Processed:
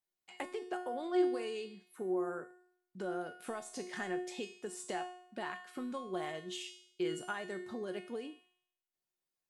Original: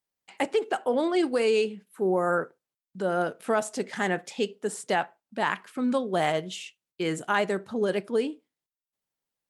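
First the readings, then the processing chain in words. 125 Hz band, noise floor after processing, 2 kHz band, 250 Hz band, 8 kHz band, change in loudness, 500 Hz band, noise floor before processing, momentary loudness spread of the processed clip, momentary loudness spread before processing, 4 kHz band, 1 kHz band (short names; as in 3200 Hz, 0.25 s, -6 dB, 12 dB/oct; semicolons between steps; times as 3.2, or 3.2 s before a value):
-15.5 dB, under -85 dBFS, -13.0 dB, -9.5 dB, -9.0 dB, -12.0 dB, -12.0 dB, under -85 dBFS, 11 LU, 9 LU, -10.5 dB, -13.0 dB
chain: compressor, threshold -31 dBFS, peak gain reduction 11.5 dB; resonator 360 Hz, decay 0.67 s, mix 90%; gain +11 dB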